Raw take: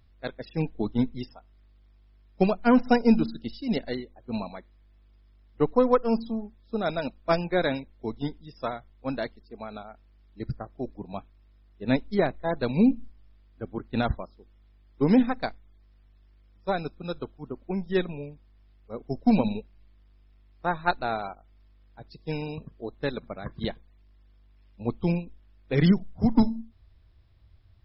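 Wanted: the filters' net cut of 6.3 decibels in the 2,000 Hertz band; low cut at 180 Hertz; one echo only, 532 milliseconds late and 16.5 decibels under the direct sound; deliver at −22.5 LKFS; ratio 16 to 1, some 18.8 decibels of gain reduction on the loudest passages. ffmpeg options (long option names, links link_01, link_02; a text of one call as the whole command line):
ffmpeg -i in.wav -af "highpass=180,equalizer=frequency=2000:width_type=o:gain=-9,acompressor=threshold=-35dB:ratio=16,aecho=1:1:532:0.15,volume=20dB" out.wav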